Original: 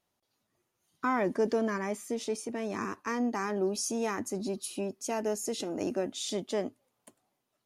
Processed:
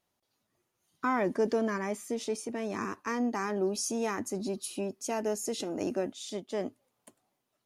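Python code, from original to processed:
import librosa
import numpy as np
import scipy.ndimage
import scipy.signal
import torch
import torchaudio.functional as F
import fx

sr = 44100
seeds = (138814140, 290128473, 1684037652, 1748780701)

y = fx.upward_expand(x, sr, threshold_db=-39.0, expansion=1.5, at=(6.12, 6.59), fade=0.02)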